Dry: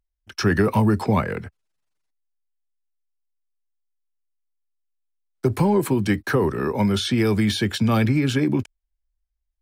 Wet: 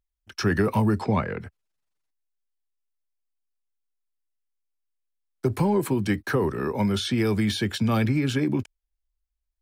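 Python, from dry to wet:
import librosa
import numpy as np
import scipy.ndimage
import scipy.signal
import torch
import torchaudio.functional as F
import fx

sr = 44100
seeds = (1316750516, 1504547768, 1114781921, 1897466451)

y = fx.lowpass(x, sr, hz=fx.line((0.98, 8400.0), (1.39, 3400.0)), slope=12, at=(0.98, 1.39), fade=0.02)
y = y * 10.0 ** (-3.5 / 20.0)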